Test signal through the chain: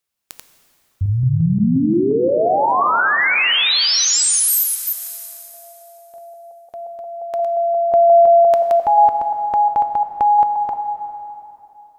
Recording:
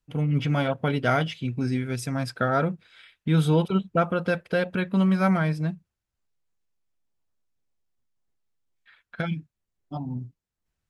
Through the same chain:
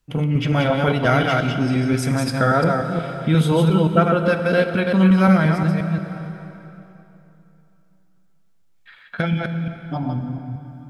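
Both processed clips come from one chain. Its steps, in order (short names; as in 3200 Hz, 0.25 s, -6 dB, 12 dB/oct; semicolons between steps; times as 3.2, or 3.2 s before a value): reverse delay 0.176 s, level -3.5 dB; plate-style reverb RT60 3 s, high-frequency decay 0.8×, DRR 8 dB; in parallel at +1 dB: compressor, threshold -31 dBFS; on the sum: gain +2.5 dB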